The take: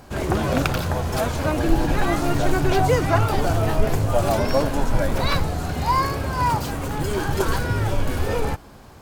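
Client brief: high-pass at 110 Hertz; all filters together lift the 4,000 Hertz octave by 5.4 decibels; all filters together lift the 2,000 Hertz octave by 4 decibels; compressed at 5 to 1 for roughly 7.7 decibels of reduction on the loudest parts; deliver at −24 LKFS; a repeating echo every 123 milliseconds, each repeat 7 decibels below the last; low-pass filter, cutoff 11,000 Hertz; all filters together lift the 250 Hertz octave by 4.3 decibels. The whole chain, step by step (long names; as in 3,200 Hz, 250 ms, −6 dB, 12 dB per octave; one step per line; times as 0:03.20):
high-pass filter 110 Hz
low-pass filter 11,000 Hz
parametric band 250 Hz +6 dB
parametric band 2,000 Hz +4 dB
parametric band 4,000 Hz +5.5 dB
downward compressor 5 to 1, threshold −22 dBFS
repeating echo 123 ms, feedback 45%, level −7 dB
level +1 dB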